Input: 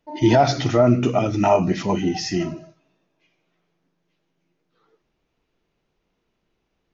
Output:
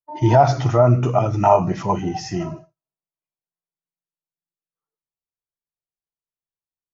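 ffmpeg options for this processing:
ffmpeg -i in.wav -af "agate=range=-33dB:threshold=-31dB:ratio=3:detection=peak,equalizer=frequency=125:width_type=o:width=1:gain=7,equalizer=frequency=250:width_type=o:width=1:gain=-8,equalizer=frequency=1000:width_type=o:width=1:gain=8,equalizer=frequency=2000:width_type=o:width=1:gain=-5,equalizer=frequency=4000:width_type=o:width=1:gain=-9" out.wav

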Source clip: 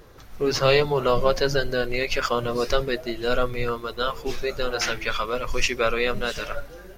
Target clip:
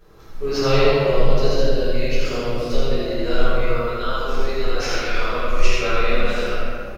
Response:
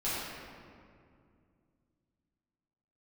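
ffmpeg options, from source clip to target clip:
-filter_complex "[0:a]asettb=1/sr,asplit=3[link_01][link_02][link_03];[link_01]atrim=end=0.894[link_04];[link_02]atrim=start=0.89:end=2.99,asetpts=PTS-STARTPTS,afade=type=in:duration=0.004:curve=qsin,afade=type=out:start_time=2.096:duration=0.004:curve=qsin,equalizer=frequency=1300:width=1.1:gain=-11[link_05];[link_03]atrim=start=2.986[link_06];[link_04][link_05]acrossfade=duration=0.004:curve1=hsin:curve2=qsin[link_07];[link_07][link_06]acrossfade=duration=0.004:curve1=qsin:curve2=hsin,aecho=1:1:82:0.708[link_08];[1:a]atrim=start_sample=2205[link_09];[link_08][link_09]afir=irnorm=-1:irlink=0,volume=-7dB"

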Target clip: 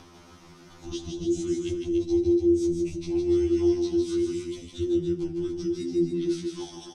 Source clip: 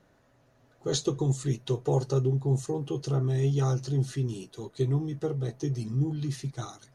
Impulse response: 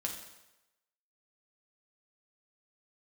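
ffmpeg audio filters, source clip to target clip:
-filter_complex "[0:a]lowpass=5600,aemphasis=mode=production:type=75fm,acompressor=mode=upward:threshold=-34dB:ratio=2.5,asplit=2[link_01][link_02];[1:a]atrim=start_sample=2205,adelay=78[link_03];[link_02][link_03]afir=irnorm=-1:irlink=0,volume=-19dB[link_04];[link_01][link_04]amix=inputs=2:normalize=0,acrossover=split=340[link_05][link_06];[link_06]acompressor=threshold=-39dB:ratio=4[link_07];[link_05][link_07]amix=inputs=2:normalize=0,highpass=100,afreqshift=-480,bass=frequency=250:gain=-3,treble=frequency=4000:gain=0,aecho=1:1:157.4|288.6:0.562|0.447,afftfilt=real='re*2*eq(mod(b,4),0)':imag='im*2*eq(mod(b,4),0)':win_size=2048:overlap=0.75,volume=1dB"

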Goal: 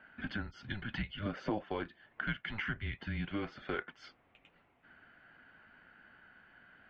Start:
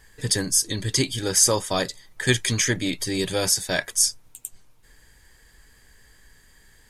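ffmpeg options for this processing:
ffmpeg -i in.wav -filter_complex "[0:a]highpass=frequency=290:width_type=q:width=0.5412,highpass=frequency=290:width_type=q:width=1.307,lowpass=frequency=2900:width_type=q:width=0.5176,lowpass=frequency=2900:width_type=q:width=0.7071,lowpass=frequency=2900:width_type=q:width=1.932,afreqshift=-210,acompressor=threshold=-38dB:ratio=3,asettb=1/sr,asplit=3[link_01][link_02][link_03];[link_01]atrim=end=1.194[link_04];[link_02]atrim=start=1.19:end=1.64,asetpts=PTS-STARTPTS,afade=type=in:duration=0.004:curve=qsin,afade=type=out:start_time=0.446:duration=0.004:curve=qsin,equalizer=frequency=530:width=3.5:gain=14.5[link_05];[link_03]atrim=start=1.636[link_06];[link_04][link_05]acrossfade=duration=0.004:curve1=hsin:curve2=qsin[link_07];[link_07][link_06]acrossfade=duration=0.004:curve1=qsin:curve2=hsin" out.wav

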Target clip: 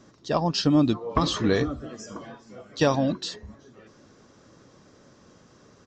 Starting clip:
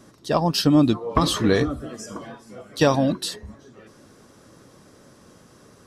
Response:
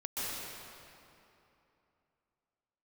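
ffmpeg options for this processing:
-af "aresample=16000,aresample=44100,volume=-3.5dB"

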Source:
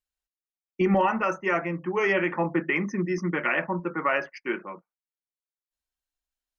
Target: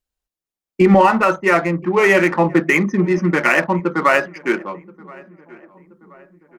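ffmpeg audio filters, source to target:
ffmpeg -i in.wav -filter_complex "[0:a]asplit=2[link_01][link_02];[link_02]adynamicsmooth=sensitivity=6.5:basefreq=1100,volume=1.5dB[link_03];[link_01][link_03]amix=inputs=2:normalize=0,asplit=2[link_04][link_05];[link_05]adelay=1027,lowpass=frequency=1700:poles=1,volume=-23dB,asplit=2[link_06][link_07];[link_07]adelay=1027,lowpass=frequency=1700:poles=1,volume=0.53,asplit=2[link_08][link_09];[link_09]adelay=1027,lowpass=frequency=1700:poles=1,volume=0.53,asplit=2[link_10][link_11];[link_11]adelay=1027,lowpass=frequency=1700:poles=1,volume=0.53[link_12];[link_04][link_06][link_08][link_10][link_12]amix=inputs=5:normalize=0,volume=4dB" out.wav

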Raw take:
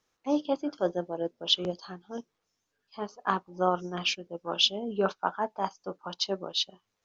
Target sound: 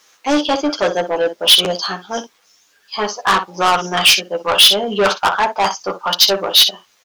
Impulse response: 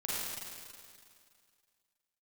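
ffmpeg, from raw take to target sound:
-filter_complex "[0:a]aecho=1:1:10|61:0.668|0.211,asplit=2[link_01][link_02];[link_02]highpass=frequency=720:poles=1,volume=24dB,asoftclip=type=tanh:threshold=-8.5dB[link_03];[link_01][link_03]amix=inputs=2:normalize=0,lowpass=frequency=1900:poles=1,volume=-6dB,crystalizer=i=7:c=0,volume=1.5dB"

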